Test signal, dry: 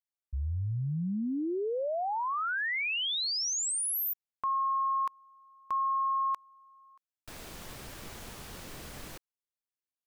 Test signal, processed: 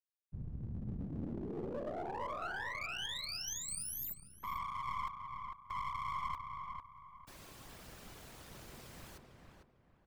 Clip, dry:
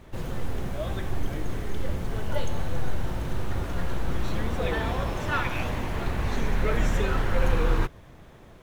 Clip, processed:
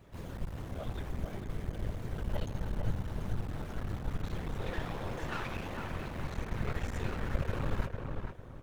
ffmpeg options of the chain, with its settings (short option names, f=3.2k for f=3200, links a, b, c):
-filter_complex "[0:a]afftfilt=real='hypot(re,im)*cos(2*PI*random(0))':imag='hypot(re,im)*sin(2*PI*random(1))':win_size=512:overlap=0.75,aeval=exprs='clip(val(0),-1,0.0112)':c=same,asplit=2[a][b];[b]adelay=450,lowpass=f=1.8k:p=1,volume=-4dB,asplit=2[c][d];[d]adelay=450,lowpass=f=1.8k:p=1,volume=0.33,asplit=2[e][f];[f]adelay=450,lowpass=f=1.8k:p=1,volume=0.33,asplit=2[g][h];[h]adelay=450,lowpass=f=1.8k:p=1,volume=0.33[i];[a][c][e][g][i]amix=inputs=5:normalize=0,volume=-3dB"